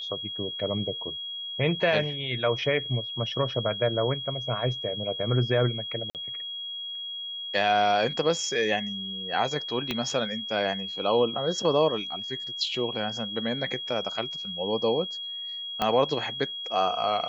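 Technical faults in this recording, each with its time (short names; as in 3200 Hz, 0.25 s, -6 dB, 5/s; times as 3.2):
tone 3300 Hz -33 dBFS
6.1–6.15 gap 48 ms
9.91 pop -14 dBFS
15.82 pop -12 dBFS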